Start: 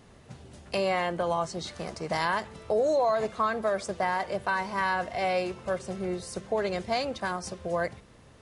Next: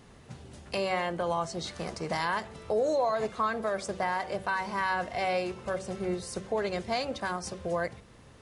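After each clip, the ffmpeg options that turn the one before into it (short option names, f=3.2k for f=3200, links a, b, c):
-filter_complex "[0:a]equalizer=f=630:w=6.2:g=-3,bandreject=f=94.98:t=h:w=4,bandreject=f=189.96:t=h:w=4,bandreject=f=284.94:t=h:w=4,bandreject=f=379.92:t=h:w=4,bandreject=f=474.9:t=h:w=4,bandreject=f=569.88:t=h:w=4,bandreject=f=664.86:t=h:w=4,bandreject=f=759.84:t=h:w=4,asplit=2[a][b];[b]alimiter=limit=-22.5dB:level=0:latency=1:release=343,volume=2.5dB[c];[a][c]amix=inputs=2:normalize=0,volume=-6.5dB"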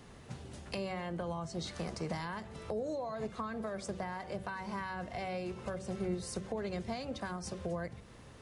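-filter_complex "[0:a]acrossover=split=270[a][b];[b]acompressor=threshold=-39dB:ratio=6[c];[a][c]amix=inputs=2:normalize=0"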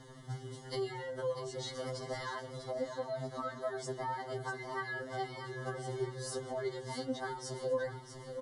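-filter_complex "[0:a]asuperstop=centerf=2500:order=20:qfactor=3.8,asplit=2[a][b];[b]aecho=0:1:645|1290|1935|2580|3225:0.335|0.151|0.0678|0.0305|0.0137[c];[a][c]amix=inputs=2:normalize=0,afftfilt=real='re*2.45*eq(mod(b,6),0)':imag='im*2.45*eq(mod(b,6),0)':win_size=2048:overlap=0.75,volume=3dB"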